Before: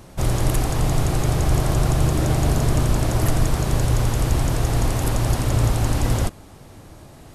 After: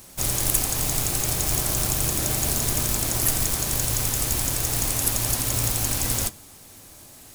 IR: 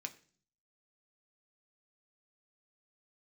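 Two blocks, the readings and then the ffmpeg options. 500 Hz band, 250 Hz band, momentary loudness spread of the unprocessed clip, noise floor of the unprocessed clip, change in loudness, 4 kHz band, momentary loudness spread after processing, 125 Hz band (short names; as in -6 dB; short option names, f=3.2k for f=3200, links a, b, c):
-7.5 dB, -8.5 dB, 2 LU, -44 dBFS, -1.0 dB, +4.0 dB, 2 LU, -10.0 dB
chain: -filter_complex "[0:a]acrusher=bits=5:mode=log:mix=0:aa=0.000001,crystalizer=i=5:c=0,asplit=2[a][b];[1:a]atrim=start_sample=2205[c];[b][c]afir=irnorm=-1:irlink=0,volume=-1.5dB[d];[a][d]amix=inputs=2:normalize=0,volume=-11dB"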